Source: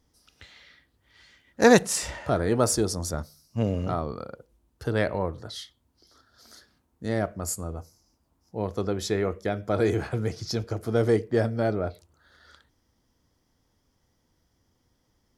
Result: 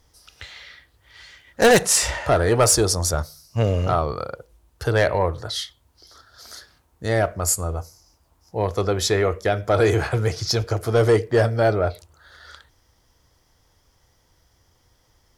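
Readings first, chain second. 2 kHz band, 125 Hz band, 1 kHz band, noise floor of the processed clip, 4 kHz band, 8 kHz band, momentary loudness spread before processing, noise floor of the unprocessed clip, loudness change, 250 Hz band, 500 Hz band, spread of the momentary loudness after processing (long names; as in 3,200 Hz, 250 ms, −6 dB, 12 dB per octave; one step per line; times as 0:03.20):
+6.5 dB, +7.0 dB, +7.0 dB, −63 dBFS, +9.5 dB, +9.5 dB, 15 LU, −71 dBFS, +6.0 dB, +0.5 dB, +5.5 dB, 14 LU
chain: parametric band 230 Hz −12 dB 1.2 octaves
in parallel at −8 dB: sine wavefolder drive 12 dB, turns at −6 dBFS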